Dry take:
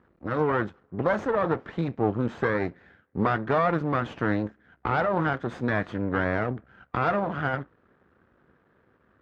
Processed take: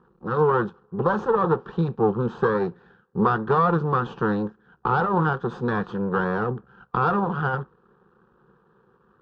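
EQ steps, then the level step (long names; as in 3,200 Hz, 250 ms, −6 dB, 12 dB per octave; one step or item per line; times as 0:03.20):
low-pass filter 4,100 Hz 12 dB per octave
phaser with its sweep stopped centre 420 Hz, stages 8
+6.5 dB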